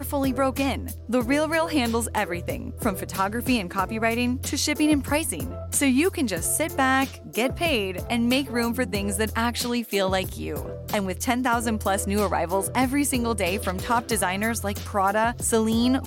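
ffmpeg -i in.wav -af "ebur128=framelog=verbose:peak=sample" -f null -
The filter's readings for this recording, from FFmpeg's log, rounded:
Integrated loudness:
  I:         -24.3 LUFS
  Threshold: -34.3 LUFS
Loudness range:
  LRA:         2.1 LU
  Threshold: -44.4 LUFS
  LRA low:   -25.4 LUFS
  LRA high:  -23.3 LUFS
Sample peak:
  Peak:      -10.6 dBFS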